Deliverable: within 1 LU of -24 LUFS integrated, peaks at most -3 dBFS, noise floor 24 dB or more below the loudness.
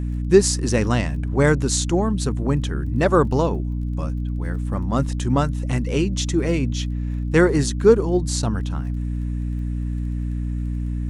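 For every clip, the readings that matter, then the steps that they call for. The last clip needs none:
tick rate 21 per s; hum 60 Hz; highest harmonic 300 Hz; hum level -22 dBFS; loudness -21.5 LUFS; peak level -1.5 dBFS; loudness target -24.0 LUFS
-> de-click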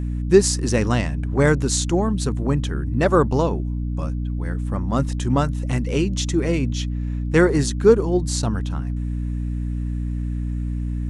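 tick rate 0 per s; hum 60 Hz; highest harmonic 300 Hz; hum level -22 dBFS
-> de-hum 60 Hz, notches 5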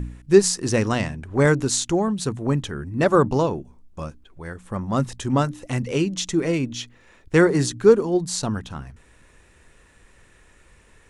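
hum not found; loudness -21.5 LUFS; peak level -2.5 dBFS; loudness target -24.0 LUFS
-> trim -2.5 dB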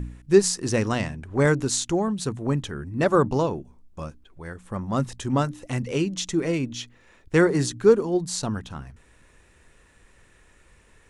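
loudness -24.0 LUFS; peak level -5.0 dBFS; noise floor -57 dBFS

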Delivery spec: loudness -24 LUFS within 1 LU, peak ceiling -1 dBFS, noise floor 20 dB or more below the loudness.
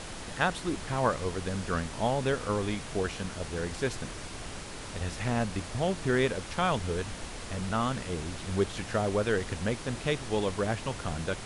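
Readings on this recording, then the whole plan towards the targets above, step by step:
noise floor -41 dBFS; noise floor target -52 dBFS; loudness -31.5 LUFS; peak level -11.5 dBFS; loudness target -24.0 LUFS
-> noise print and reduce 11 dB; trim +7.5 dB

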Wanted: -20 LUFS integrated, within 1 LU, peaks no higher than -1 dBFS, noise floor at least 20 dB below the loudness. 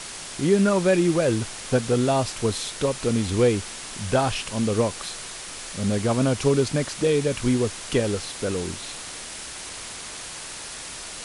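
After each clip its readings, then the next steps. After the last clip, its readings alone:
noise floor -37 dBFS; noise floor target -45 dBFS; loudness -24.5 LUFS; peak level -8.5 dBFS; loudness target -20.0 LUFS
-> noise print and reduce 8 dB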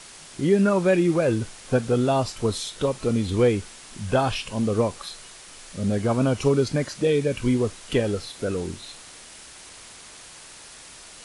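noise floor -45 dBFS; loudness -23.5 LUFS; peak level -8.5 dBFS; loudness target -20.0 LUFS
-> trim +3.5 dB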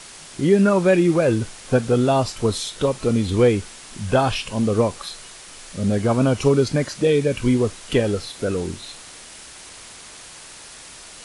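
loudness -20.0 LUFS; peak level -5.0 dBFS; noise floor -41 dBFS

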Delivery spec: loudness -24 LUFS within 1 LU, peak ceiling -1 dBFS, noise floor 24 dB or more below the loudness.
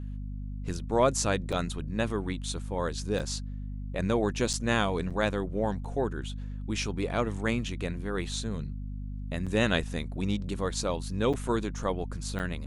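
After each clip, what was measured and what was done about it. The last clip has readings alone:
dropouts 8; longest dropout 6.4 ms; hum 50 Hz; highest harmonic 250 Hz; hum level -34 dBFS; loudness -31.0 LUFS; peak level -10.5 dBFS; loudness target -24.0 LUFS
-> interpolate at 1.52/3.19/4.53/5.10/5.85/9.46/11.33/12.39 s, 6.4 ms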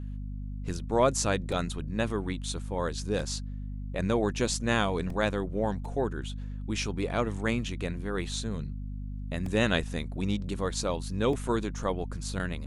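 dropouts 0; hum 50 Hz; highest harmonic 250 Hz; hum level -34 dBFS
-> hum notches 50/100/150/200/250 Hz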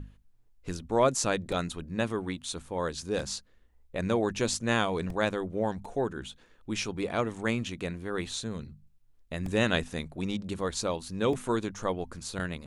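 hum not found; loudness -31.5 LUFS; peak level -11.5 dBFS; loudness target -24.0 LUFS
-> trim +7.5 dB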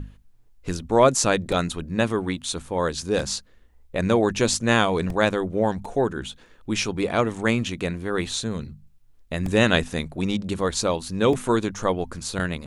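loudness -24.0 LUFS; peak level -4.0 dBFS; noise floor -53 dBFS

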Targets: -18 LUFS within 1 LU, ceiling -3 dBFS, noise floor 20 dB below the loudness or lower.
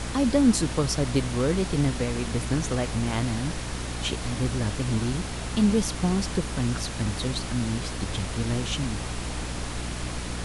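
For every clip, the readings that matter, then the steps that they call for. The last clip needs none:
hum 60 Hz; highest harmonic 300 Hz; hum level -32 dBFS; noise floor -33 dBFS; noise floor target -47 dBFS; loudness -27.0 LUFS; peak level -9.5 dBFS; loudness target -18.0 LUFS
-> de-hum 60 Hz, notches 5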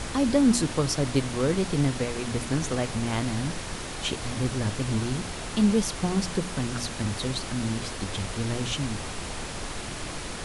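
hum not found; noise floor -36 dBFS; noise floor target -48 dBFS
-> noise print and reduce 12 dB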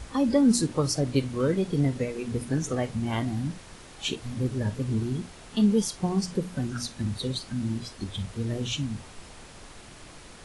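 noise floor -47 dBFS; noise floor target -48 dBFS
-> noise print and reduce 6 dB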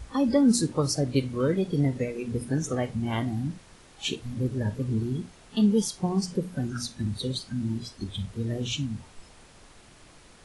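noise floor -53 dBFS; loudness -28.0 LUFS; peak level -10.0 dBFS; loudness target -18.0 LUFS
-> trim +10 dB; peak limiter -3 dBFS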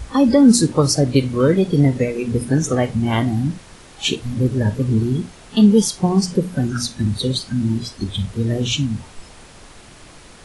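loudness -18.5 LUFS; peak level -3.0 dBFS; noise floor -43 dBFS

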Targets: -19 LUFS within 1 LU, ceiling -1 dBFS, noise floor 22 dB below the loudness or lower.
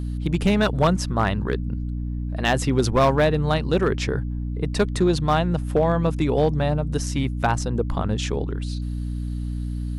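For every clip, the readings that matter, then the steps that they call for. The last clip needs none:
clipped samples 0.6%; clipping level -11.5 dBFS; hum 60 Hz; highest harmonic 300 Hz; hum level -25 dBFS; loudness -23.0 LUFS; peak level -11.5 dBFS; loudness target -19.0 LUFS
-> clip repair -11.5 dBFS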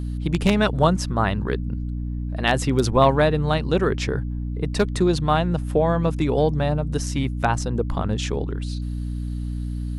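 clipped samples 0.0%; hum 60 Hz; highest harmonic 300 Hz; hum level -25 dBFS
-> de-hum 60 Hz, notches 5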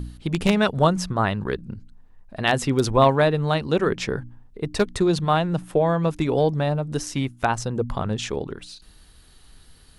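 hum not found; loudness -23.0 LUFS; peak level -2.5 dBFS; loudness target -19.0 LUFS
-> trim +4 dB; peak limiter -1 dBFS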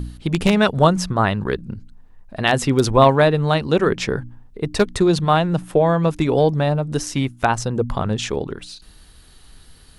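loudness -19.0 LUFS; peak level -1.0 dBFS; noise floor -47 dBFS

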